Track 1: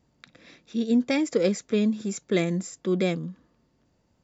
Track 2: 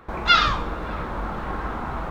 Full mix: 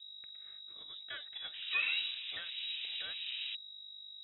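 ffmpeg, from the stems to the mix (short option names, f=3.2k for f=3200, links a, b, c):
-filter_complex "[0:a]highpass=800,aeval=exprs='val(0)+0.0158*(sin(2*PI*50*n/s)+sin(2*PI*2*50*n/s)/2+sin(2*PI*3*50*n/s)/3+sin(2*PI*4*50*n/s)/4+sin(2*PI*5*50*n/s)/5)':c=same,volume=-13.5dB,asplit=2[a][b];[1:a]lowpass=f=2.1k:w=0.5412,lowpass=f=2.1k:w=1.3066,adelay=1450,volume=-5.5dB[c];[b]apad=whole_len=156587[d];[c][d]sidechaincompress=threshold=-55dB:ratio=3:attack=5:release=286[e];[a][e]amix=inputs=2:normalize=0,lowpass=f=3.3k:t=q:w=0.5098,lowpass=f=3.3k:t=q:w=0.6013,lowpass=f=3.3k:t=q:w=0.9,lowpass=f=3.3k:t=q:w=2.563,afreqshift=-3900"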